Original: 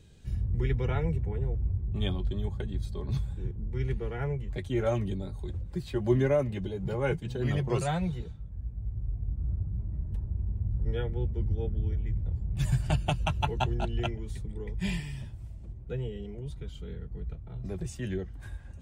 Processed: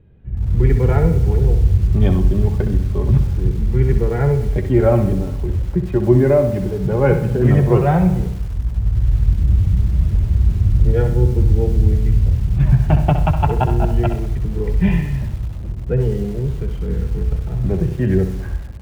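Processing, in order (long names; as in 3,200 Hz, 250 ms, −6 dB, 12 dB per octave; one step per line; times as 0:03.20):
low-pass filter 2,500 Hz 24 dB per octave
tilt shelving filter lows +5 dB, about 1,400 Hz
automatic gain control gain up to 12 dB
flutter between parallel walls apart 11.1 metres, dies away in 0.43 s
feedback echo at a low word length 97 ms, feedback 55%, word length 5 bits, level −15 dB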